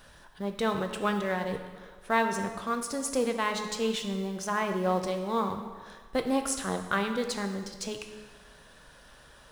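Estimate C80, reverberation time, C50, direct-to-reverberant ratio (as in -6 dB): 9.0 dB, 1.5 s, 7.5 dB, 5.0 dB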